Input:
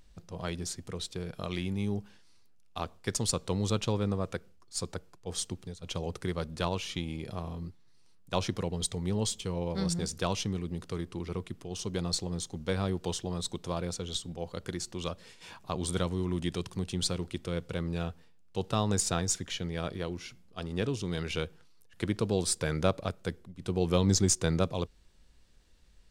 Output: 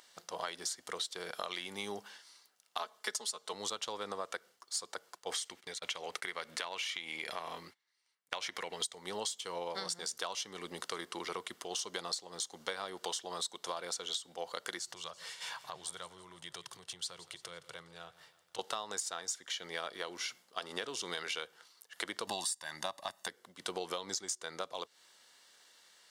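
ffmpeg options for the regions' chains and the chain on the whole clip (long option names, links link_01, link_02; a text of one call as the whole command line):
ffmpeg -i in.wav -filter_complex "[0:a]asettb=1/sr,asplit=3[link_01][link_02][link_03];[link_01]atrim=end=2.784[link_04];[link_02]atrim=start=2.78:end=3.53,asetpts=PTS-STARTPTS,afade=type=in:duration=0.004:curve=qsin,afade=type=out:start_time=0.746:duration=0.004:curve=qsin,highpass=180,aecho=1:1:4.7:0.79,atrim=end_sample=33075[link_05];[link_03]atrim=start=3.526[link_06];[link_04][link_05]acrossfade=duration=0.004:curve1=hsin:curve2=qsin[link_07];[link_07][link_06]acrossfade=duration=0.004:curve1=qsin:curve2=hsin,asettb=1/sr,asplit=3[link_08][link_09][link_10];[link_08]atrim=end=5.314[link_11];[link_09]atrim=start=5.31:end=8.81,asetpts=PTS-STARTPTS,afade=type=in:duration=0.004:curve=qsin,afade=type=out:start_time=3.496:duration=0.004:curve=qsin,agate=range=-19dB:threshold=-50dB:ratio=16:release=100:detection=peak,equalizer=frequency=2200:width=1.9:gain=10,acompressor=threshold=-37dB:ratio=2:attack=3.2:release=140:knee=1:detection=peak[link_12];[link_10]atrim=start=8.806[link_13];[link_11][link_12]acrossfade=duration=0.004:curve1=hsin:curve2=qsin[link_14];[link_14][link_13]acrossfade=duration=0.004:curve1=qsin:curve2=hsin,asettb=1/sr,asplit=3[link_15][link_16][link_17];[link_15]atrim=end=14.794[link_18];[link_16]atrim=start=14.79:end=18.59,asetpts=PTS-STARTPTS,afade=type=in:duration=0.004:curve=qsin,afade=type=out:start_time=3.796:duration=0.004:curve=qsin,lowshelf=frequency=180:width_type=q:width=3:gain=8,acompressor=threshold=-46dB:ratio=3:attack=3.2:release=140:knee=1:detection=peak,aecho=1:1:168|336|504|672|840:0.126|0.0692|0.0381|0.0209|0.0115,atrim=end_sample=167580[link_19];[link_17]atrim=start=18.586[link_20];[link_18][link_19]acrossfade=duration=0.004:curve1=hsin:curve2=qsin[link_21];[link_21][link_20]acrossfade=duration=0.004:curve1=qsin:curve2=hsin,asettb=1/sr,asplit=3[link_22][link_23][link_24];[link_22]atrim=end=22.274[link_25];[link_23]atrim=start=22.27:end=23.28,asetpts=PTS-STARTPTS,afade=type=in:duration=0.004:curve=qsin,afade=type=out:start_time=1.006:duration=0.004:curve=qsin,equalizer=frequency=12000:width=0.5:gain=5,acontrast=21,aecho=1:1:1.1:0.88,atrim=end_sample=44541[link_26];[link_24]atrim=start=23.276[link_27];[link_25][link_26]acrossfade=duration=0.004:curve1=hsin:curve2=qsin[link_28];[link_28][link_27]acrossfade=duration=0.004:curve1=qsin:curve2=hsin,highpass=810,bandreject=frequency=2500:width=7.4,acompressor=threshold=-45dB:ratio=16,volume=10.5dB" out.wav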